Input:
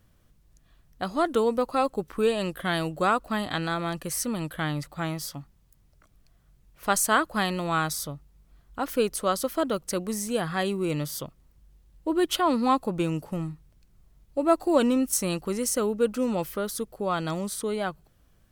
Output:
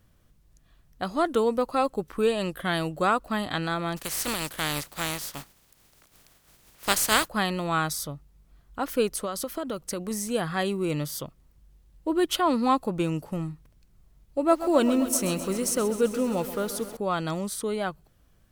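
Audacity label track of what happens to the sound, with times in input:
3.960000	7.270000	compressing power law on the bin magnitudes exponent 0.4
9.240000	10.110000	downward compressor 10 to 1, threshold −26 dBFS
13.520000	16.970000	feedback echo at a low word length 131 ms, feedback 80%, word length 7 bits, level −12.5 dB

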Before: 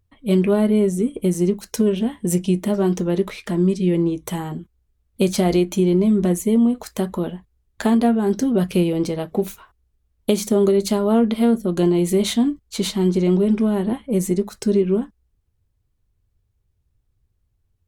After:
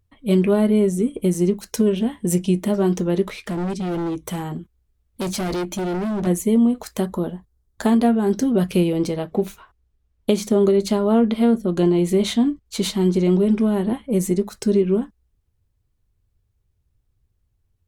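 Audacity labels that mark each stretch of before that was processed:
3.220000	6.270000	hard clipping −22 dBFS
7.060000	7.860000	parametric band 2,500 Hz −10 dB 0.82 octaves
9.190000	12.660000	high-shelf EQ 7,900 Hz −9 dB

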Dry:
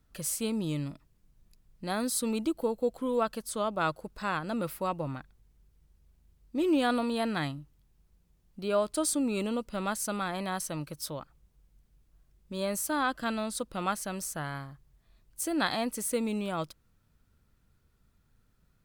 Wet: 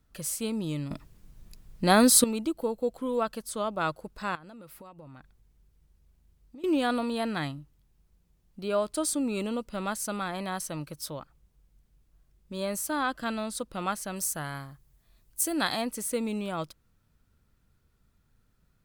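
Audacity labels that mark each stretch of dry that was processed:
0.910000	2.240000	clip gain +12 dB
4.350000	6.640000	downward compressor 12 to 1, threshold −44 dBFS
14.160000	15.820000	high-shelf EQ 6,400 Hz +10 dB

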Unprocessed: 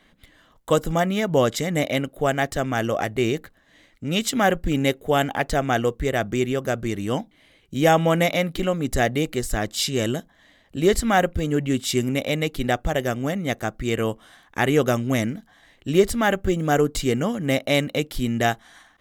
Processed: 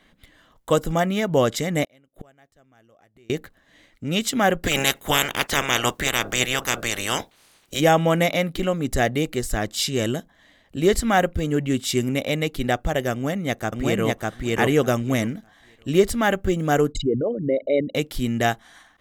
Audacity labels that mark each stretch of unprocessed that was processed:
1.840000	3.300000	gate with flip shuts at −23 dBFS, range −33 dB
4.630000	7.790000	ceiling on every frequency bin ceiling under each frame's peak by 27 dB
13.120000	14.070000	delay throw 600 ms, feedback 15%, level −0.5 dB
16.920000	17.950000	spectral envelope exaggerated exponent 3

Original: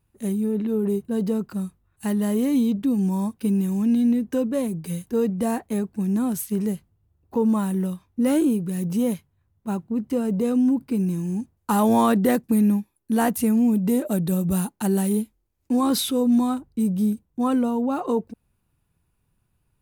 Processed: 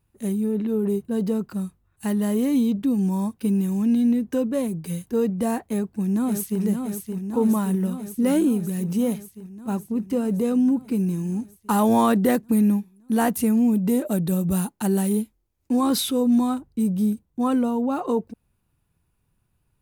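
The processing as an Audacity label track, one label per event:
5.640000	6.610000	delay throw 570 ms, feedback 75%, level −5.5 dB

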